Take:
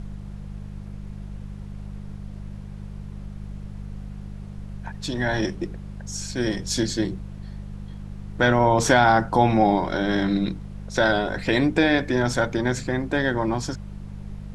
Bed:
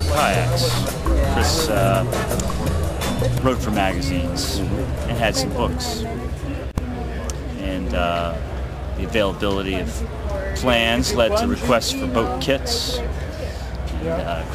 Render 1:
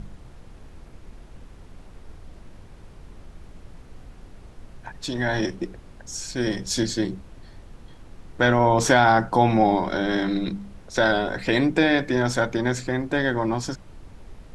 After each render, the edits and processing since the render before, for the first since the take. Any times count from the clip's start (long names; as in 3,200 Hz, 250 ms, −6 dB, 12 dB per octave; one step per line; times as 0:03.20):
hum removal 50 Hz, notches 4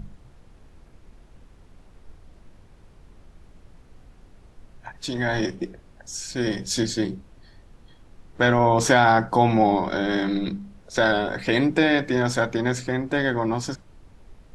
noise reduction from a noise print 6 dB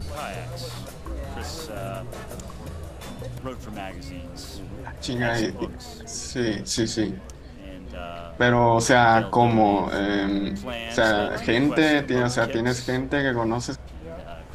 mix in bed −15 dB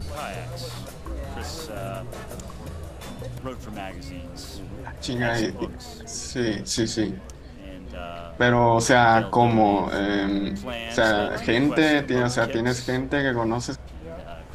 no processing that can be heard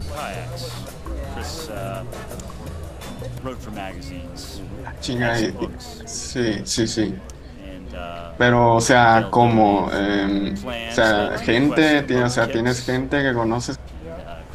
level +3.5 dB
brickwall limiter −1 dBFS, peak gain reduction 1.5 dB